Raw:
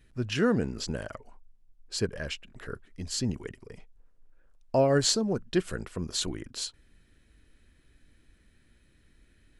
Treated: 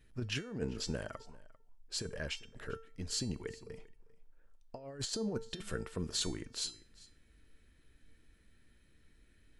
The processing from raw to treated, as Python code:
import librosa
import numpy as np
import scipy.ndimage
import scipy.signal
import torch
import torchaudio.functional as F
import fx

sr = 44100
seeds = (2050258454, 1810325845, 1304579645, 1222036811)

y = fx.over_compress(x, sr, threshold_db=-29.0, ratio=-0.5)
y = fx.comb_fb(y, sr, f0_hz=450.0, decay_s=0.4, harmonics='all', damping=0.0, mix_pct=70)
y = y + 10.0 ** (-21.0 / 20.0) * np.pad(y, (int(396 * sr / 1000.0), 0))[:len(y)]
y = y * librosa.db_to_amplitude(2.5)